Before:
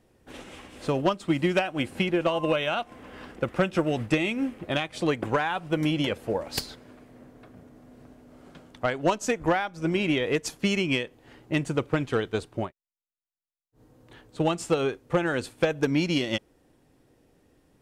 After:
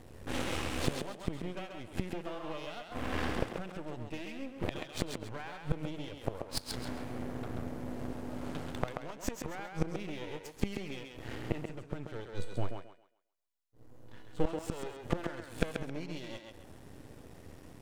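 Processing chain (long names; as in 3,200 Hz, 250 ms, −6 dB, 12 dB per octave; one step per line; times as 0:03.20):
parametric band 85 Hz +8 dB 1.2 octaves
harmonic and percussive parts rebalanced percussive −9 dB
in parallel at −2 dB: brickwall limiter −25 dBFS, peak gain reduction 11.5 dB
on the sum: half-wave rectification
0:12.30–0:14.46: tuned comb filter 490 Hz, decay 0.48 s, mix 80%
gate with flip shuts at −25 dBFS, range −24 dB
on a send: feedback echo with a high-pass in the loop 134 ms, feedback 29%, high-pass 240 Hz, level −4.5 dB
on the sum: level +9.5 dB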